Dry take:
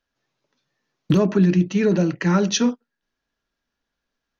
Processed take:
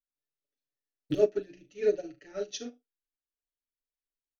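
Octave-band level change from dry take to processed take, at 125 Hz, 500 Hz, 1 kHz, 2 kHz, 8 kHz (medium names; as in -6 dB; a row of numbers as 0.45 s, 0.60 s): -26.5 dB, -5.5 dB, -21.5 dB, -18.5 dB, no reading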